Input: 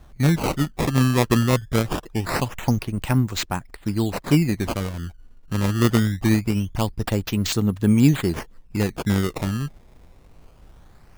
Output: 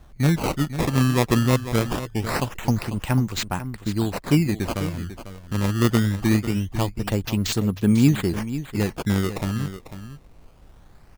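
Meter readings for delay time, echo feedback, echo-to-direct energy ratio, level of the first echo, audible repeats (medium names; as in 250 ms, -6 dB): 496 ms, no regular repeats, -12.0 dB, -12.0 dB, 1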